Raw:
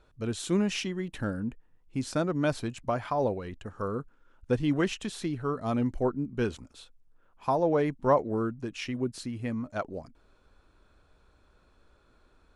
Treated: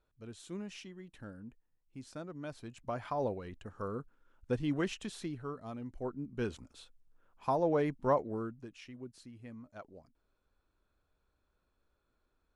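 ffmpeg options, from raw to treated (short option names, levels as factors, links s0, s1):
-af "volume=1.88,afade=t=in:st=2.56:d=0.53:silence=0.334965,afade=t=out:st=5.14:d=0.66:silence=0.316228,afade=t=in:st=5.8:d=0.9:silence=0.251189,afade=t=out:st=7.95:d=0.87:silence=0.266073"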